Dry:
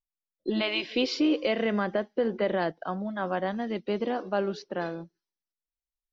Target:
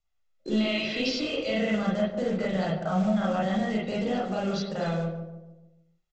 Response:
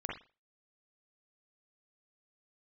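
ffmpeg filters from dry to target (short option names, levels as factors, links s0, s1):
-filter_complex "[0:a]acontrast=87,aecho=1:1:1.5:0.52,acrossover=split=210|3000[s0][s1][s2];[s1]acompressor=threshold=0.0282:ratio=5[s3];[s0][s3][s2]amix=inputs=3:normalize=0,alimiter=limit=0.0668:level=0:latency=1:release=20,bandreject=f=374.9:t=h:w=4,bandreject=f=749.8:t=h:w=4,bandreject=f=1124.7:t=h:w=4,bandreject=f=1499.6:t=h:w=4,bandreject=f=1874.5:t=h:w=4,bandreject=f=2249.4:t=h:w=4,bandreject=f=2624.3:t=h:w=4,bandreject=f=2999.2:t=h:w=4,bandreject=f=3374.1:t=h:w=4,bandreject=f=3749:t=h:w=4,bandreject=f=4123.9:t=h:w=4,bandreject=f=4498.8:t=h:w=4,bandreject=f=4873.7:t=h:w=4,bandreject=f=5248.6:t=h:w=4,bandreject=f=5623.5:t=h:w=4,bandreject=f=5998.4:t=h:w=4,bandreject=f=6373.3:t=h:w=4,bandreject=f=6748.2:t=h:w=4,bandreject=f=7123.1:t=h:w=4,bandreject=f=7498:t=h:w=4,bandreject=f=7872.9:t=h:w=4,bandreject=f=8247.8:t=h:w=4,bandreject=f=8622.7:t=h:w=4,bandreject=f=8997.6:t=h:w=4,bandreject=f=9372.5:t=h:w=4,bandreject=f=9747.4:t=h:w=4,bandreject=f=10122.3:t=h:w=4,bandreject=f=10497.2:t=h:w=4,bandreject=f=10872.1:t=h:w=4,bandreject=f=11247:t=h:w=4,bandreject=f=11621.9:t=h:w=4,bandreject=f=11996.8:t=h:w=4,bandreject=f=12371.7:t=h:w=4,bandreject=f=12746.6:t=h:w=4,bandreject=f=13121.5:t=h:w=4,bandreject=f=13496.4:t=h:w=4,bandreject=f=13871.3:t=h:w=4,aresample=16000,acrusher=bits=5:mode=log:mix=0:aa=0.000001,aresample=44100,asplit=2[s4][s5];[s5]adelay=146,lowpass=f=940:p=1,volume=0.501,asplit=2[s6][s7];[s7]adelay=146,lowpass=f=940:p=1,volume=0.5,asplit=2[s8][s9];[s9]adelay=146,lowpass=f=940:p=1,volume=0.5,asplit=2[s10][s11];[s11]adelay=146,lowpass=f=940:p=1,volume=0.5,asplit=2[s12][s13];[s13]adelay=146,lowpass=f=940:p=1,volume=0.5,asplit=2[s14][s15];[s15]adelay=146,lowpass=f=940:p=1,volume=0.5[s16];[s4][s6][s8][s10][s12][s14][s16]amix=inputs=7:normalize=0[s17];[1:a]atrim=start_sample=2205,asetrate=48510,aresample=44100[s18];[s17][s18]afir=irnorm=-1:irlink=0,volume=1.41"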